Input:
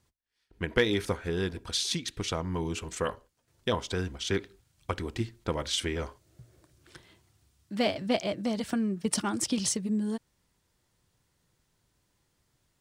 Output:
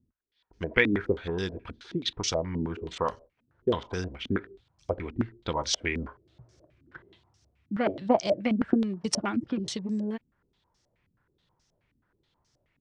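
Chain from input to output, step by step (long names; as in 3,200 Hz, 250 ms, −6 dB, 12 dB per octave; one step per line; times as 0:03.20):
0:07.86–0:08.89: transient designer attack +6 dB, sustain −2 dB
low-pass on a step sequencer 9.4 Hz 250–5,700 Hz
level −1.5 dB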